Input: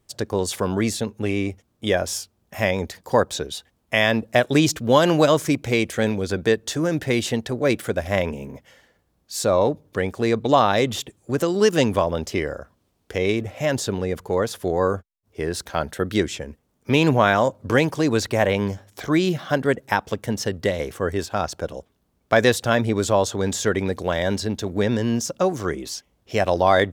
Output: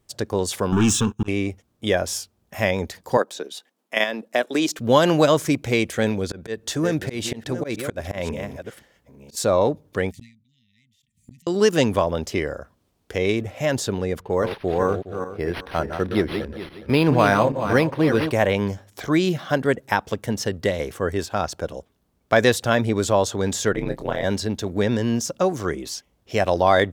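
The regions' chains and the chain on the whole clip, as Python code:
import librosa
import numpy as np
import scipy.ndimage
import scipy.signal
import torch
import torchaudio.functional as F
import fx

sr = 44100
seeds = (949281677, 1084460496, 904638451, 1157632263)

y = fx.chain(x, sr, fx.auto_swell(attack_ms=452.0),
    fx.leveller(passes=3),
    fx.fixed_phaser(hz=3000.0, stages=8), at=(0.72, 1.28))
y = fx.chain(y, sr, fx.level_steps(step_db=9),
    fx.highpass(hz=230.0, slope=24), at=(3.17, 4.79))
y = fx.chain(y, sr, fx.reverse_delay(ms=533, wet_db=-12.0),
    fx.auto_swell(attack_ms=172.0), at=(6.16, 9.37))
y = fx.chain(y, sr, fx.brickwall_bandstop(low_hz=260.0, high_hz=1800.0),
    fx.gate_flip(shuts_db=-29.0, range_db=-37),
    fx.sustainer(db_per_s=110.0), at=(10.11, 11.47))
y = fx.chain(y, sr, fx.reverse_delay_fb(ms=207, feedback_pct=44, wet_db=-7.0),
    fx.resample_linear(factor=6), at=(14.21, 18.31))
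y = fx.chain(y, sr, fx.peak_eq(hz=6600.0, db=-7.0, octaves=1.8),
    fx.ring_mod(carrier_hz=60.0),
    fx.doubler(ms=25.0, db=-9), at=(23.72, 24.24))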